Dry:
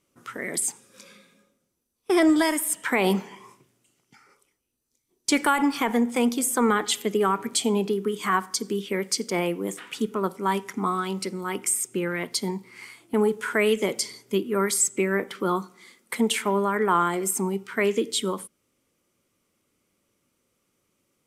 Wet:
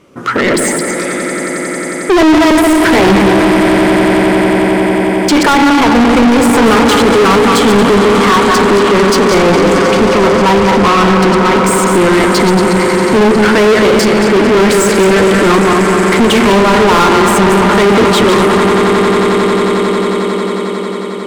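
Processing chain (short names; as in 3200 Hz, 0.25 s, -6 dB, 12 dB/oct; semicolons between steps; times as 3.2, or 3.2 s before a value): regenerating reverse delay 0.114 s, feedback 58%, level -5.5 dB; tilt -4 dB/oct; swelling echo 90 ms, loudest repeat 8, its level -17.5 dB; overdrive pedal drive 35 dB, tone 5300 Hz, clips at -2 dBFS; gain +1 dB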